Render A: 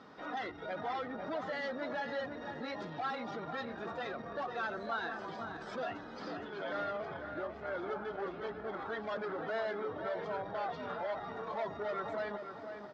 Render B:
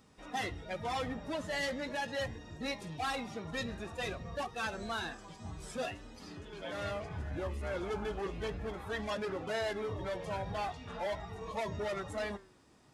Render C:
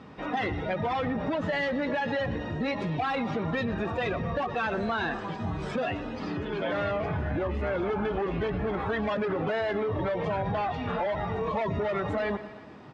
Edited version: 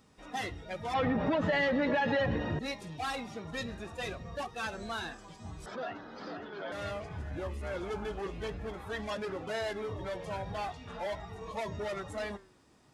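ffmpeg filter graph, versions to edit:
-filter_complex "[1:a]asplit=3[a][b][c];[a]atrim=end=0.942[d];[2:a]atrim=start=0.938:end=2.592[e];[b]atrim=start=2.588:end=5.662[f];[0:a]atrim=start=5.658:end=6.722[g];[c]atrim=start=6.718[h];[d][e]acrossfade=d=0.004:c1=hsin:c2=hsin[i];[i][f]acrossfade=d=0.004:c1=hsin:c2=hsin[j];[j][g]acrossfade=d=0.004:c1=hsin:c2=hsin[k];[k][h]acrossfade=d=0.004:c1=hsin:c2=hsin"

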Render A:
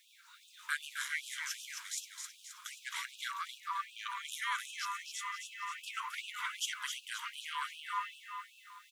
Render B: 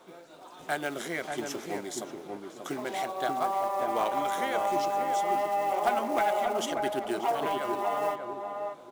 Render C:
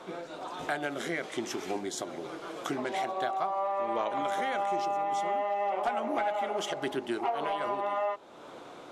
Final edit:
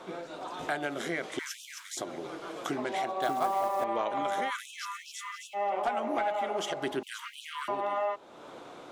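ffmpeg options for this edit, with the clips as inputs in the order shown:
-filter_complex "[0:a]asplit=3[a][b][c];[2:a]asplit=5[d][e][f][g][h];[d]atrim=end=1.392[i];[a]atrim=start=1.388:end=1.972[j];[e]atrim=start=1.968:end=3.222[k];[1:a]atrim=start=3.218:end=3.842[l];[f]atrim=start=3.838:end=4.51[m];[b]atrim=start=4.47:end=5.57[n];[g]atrim=start=5.53:end=7.032[o];[c]atrim=start=7.028:end=7.682[p];[h]atrim=start=7.678[q];[i][j]acrossfade=d=0.004:c1=hsin:c2=hsin[r];[r][k]acrossfade=d=0.004:c1=hsin:c2=hsin[s];[s][l]acrossfade=d=0.004:c1=hsin:c2=hsin[t];[t][m]acrossfade=d=0.004:c1=hsin:c2=hsin[u];[u][n]acrossfade=d=0.04:c1=tri:c2=tri[v];[v][o]acrossfade=d=0.04:c1=tri:c2=tri[w];[w][p]acrossfade=d=0.004:c1=hsin:c2=hsin[x];[x][q]acrossfade=d=0.004:c1=hsin:c2=hsin"

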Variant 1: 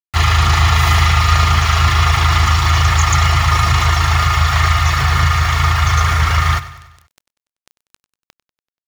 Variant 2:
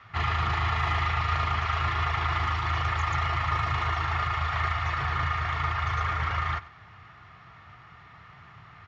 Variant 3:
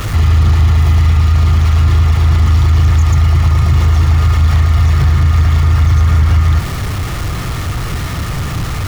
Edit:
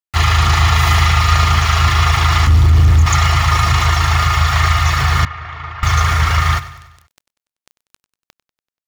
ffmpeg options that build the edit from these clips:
-filter_complex "[0:a]asplit=3[a][b][c];[a]atrim=end=2.472[d];[2:a]atrim=start=2.468:end=3.062[e];[b]atrim=start=3.058:end=5.252[f];[1:a]atrim=start=5.248:end=5.832[g];[c]atrim=start=5.828[h];[d][e]acrossfade=d=0.004:c1=hsin:c2=hsin[i];[i][f]acrossfade=d=0.004:c1=hsin:c2=hsin[j];[j][g]acrossfade=d=0.004:c1=hsin:c2=hsin[k];[k][h]acrossfade=d=0.004:c1=hsin:c2=hsin"

